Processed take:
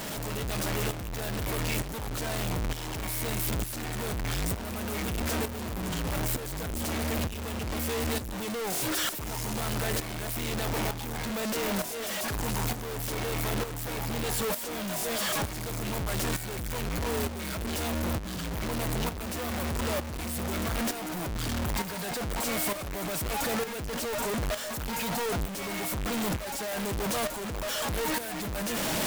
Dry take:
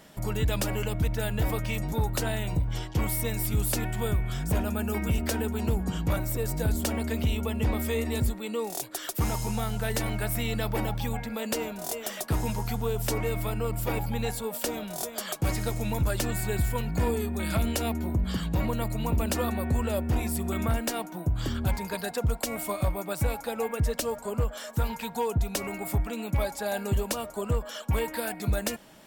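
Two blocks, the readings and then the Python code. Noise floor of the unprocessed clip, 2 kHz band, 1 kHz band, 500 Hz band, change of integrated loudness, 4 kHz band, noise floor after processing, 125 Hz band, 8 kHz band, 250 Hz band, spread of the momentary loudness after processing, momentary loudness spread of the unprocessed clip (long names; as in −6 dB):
−42 dBFS, +2.0 dB, 0.0 dB, −2.5 dB, −1.5 dB, +3.5 dB, −37 dBFS, −5.5 dB, +2.0 dB, −2.5 dB, 4 LU, 4 LU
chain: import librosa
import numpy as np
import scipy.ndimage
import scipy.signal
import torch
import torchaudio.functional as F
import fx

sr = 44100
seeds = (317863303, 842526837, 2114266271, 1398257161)

y = np.sign(x) * np.sqrt(np.mean(np.square(x)))
y = fx.tremolo_shape(y, sr, shape='saw_up', hz=1.1, depth_pct=65)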